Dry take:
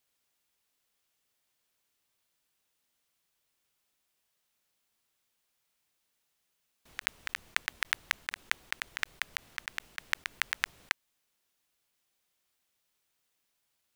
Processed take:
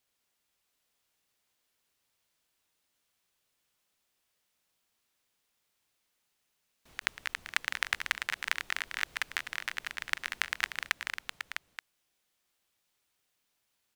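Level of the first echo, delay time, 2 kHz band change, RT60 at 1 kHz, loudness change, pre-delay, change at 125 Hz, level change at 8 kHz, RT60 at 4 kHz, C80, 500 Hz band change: -9.0 dB, 188 ms, +1.5 dB, no reverb, +1.0 dB, no reverb, no reading, +0.5 dB, no reverb, no reverb, +1.5 dB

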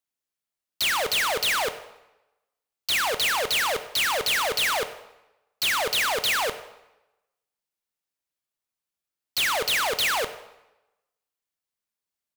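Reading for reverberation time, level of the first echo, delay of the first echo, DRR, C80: 0.95 s, -20.5 dB, 103 ms, 10.5 dB, 14.0 dB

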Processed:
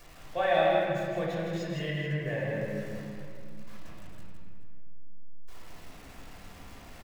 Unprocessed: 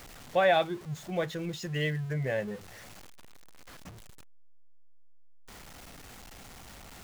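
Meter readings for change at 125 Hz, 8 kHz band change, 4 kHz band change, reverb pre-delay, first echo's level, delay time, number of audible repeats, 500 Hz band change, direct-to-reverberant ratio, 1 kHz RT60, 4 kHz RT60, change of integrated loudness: 0.0 dB, -5.5 dB, -2.0 dB, 3 ms, -5.0 dB, 161 ms, 1, +1.5 dB, -7.0 dB, 1.9 s, 1.4 s, 0.0 dB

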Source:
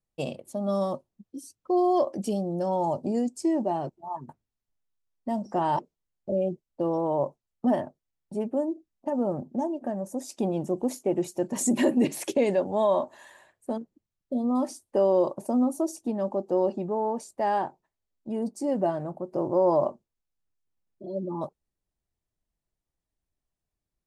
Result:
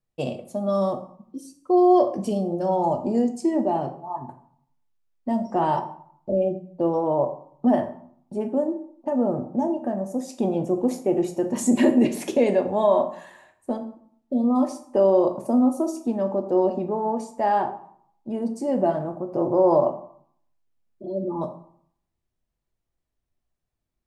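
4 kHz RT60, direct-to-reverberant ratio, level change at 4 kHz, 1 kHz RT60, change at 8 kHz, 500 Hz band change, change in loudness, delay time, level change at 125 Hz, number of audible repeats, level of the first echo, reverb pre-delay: 0.40 s, 5.5 dB, +1.5 dB, 0.65 s, -1.5 dB, +4.5 dB, +4.5 dB, no echo, +3.0 dB, no echo, no echo, 8 ms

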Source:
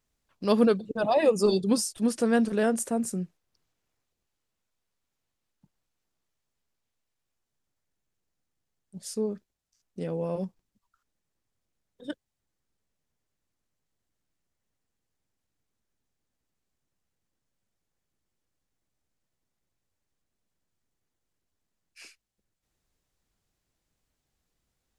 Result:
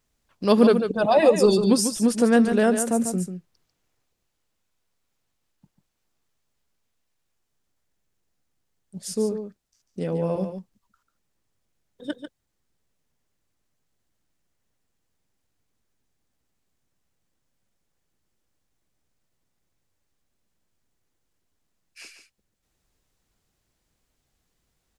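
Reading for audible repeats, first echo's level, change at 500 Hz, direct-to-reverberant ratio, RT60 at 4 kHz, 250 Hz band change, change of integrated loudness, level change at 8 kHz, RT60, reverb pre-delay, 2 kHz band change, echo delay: 1, -8.5 dB, +5.5 dB, no reverb, no reverb, +6.0 dB, +5.5 dB, +5.5 dB, no reverb, no reverb, +5.5 dB, 144 ms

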